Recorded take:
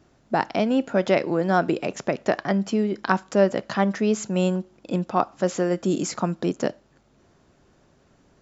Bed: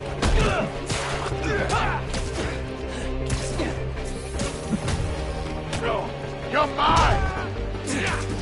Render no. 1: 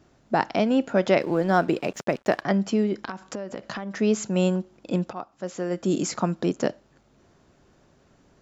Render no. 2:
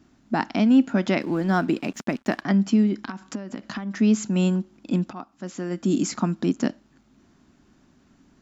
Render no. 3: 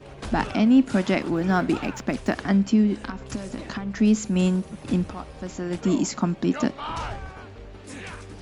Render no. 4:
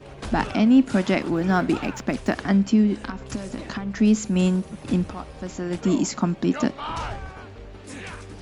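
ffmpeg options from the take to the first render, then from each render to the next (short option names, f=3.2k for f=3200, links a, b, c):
-filter_complex "[0:a]asettb=1/sr,asplit=3[a][b][c];[a]atrim=end=1.214[d];[b]atrim=start=1.21:end=2.42,asetpts=PTS-STARTPTS,afade=t=in:d=0.004:c=qsin,afade=t=out:st=1.206:d=0.004:c=qsin,aeval=exprs='sgn(val(0))*max(abs(val(0))-0.00422,0)':c=same[e];[c]atrim=start=2.416[f];[d][e]acrossfade=d=0.004:c1=hsin:c2=qsin[g];[g][f]acrossfade=d=0.004:c1=qsin:c2=hsin,asettb=1/sr,asplit=3[h][i][j];[h]atrim=end=3.034[k];[i]atrim=start=3.03:end=3.97,asetpts=PTS-STARTPTS,afade=t=in:d=0.004:c=qsin,afade=t=out:st=0.936:d=0.004:c=qsin,acompressor=threshold=-28dB:ratio=20:attack=3.2:release=140:knee=1:detection=peak[l];[j]atrim=start=3.966[m];[k][l]acrossfade=d=0.004:c1=hsin:c2=qsin[n];[n][m]acrossfade=d=0.004:c1=qsin:c2=hsin,asplit=2[o][p];[o]atrim=end=5.13,asetpts=PTS-STARTPTS,afade=t=out:st=5.126:d=0.004:c=hsin:silence=0.199526[q];[p]atrim=start=5.13,asetpts=PTS-STARTPTS,afade=t=in:d=0.81:c=qua:silence=0.199526[r];[q][r]concat=n=2:v=0:a=1"
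-af "equalizer=f=125:t=o:w=1:g=-4,equalizer=f=250:t=o:w=1:g=10,equalizer=f=500:t=o:w=1:g=-11"
-filter_complex "[1:a]volume=-13dB[a];[0:a][a]amix=inputs=2:normalize=0"
-af "volume=1dB"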